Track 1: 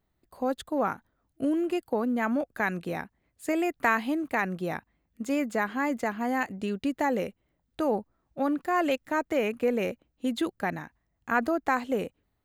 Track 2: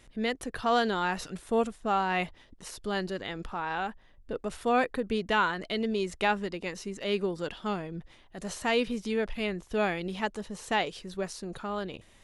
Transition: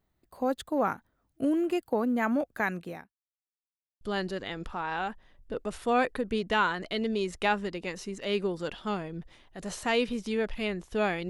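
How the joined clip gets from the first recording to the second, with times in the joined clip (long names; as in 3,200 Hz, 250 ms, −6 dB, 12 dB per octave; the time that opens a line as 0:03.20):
track 1
0:02.40–0:03.13: fade out equal-power
0:03.13–0:04.01: silence
0:04.01: continue with track 2 from 0:02.80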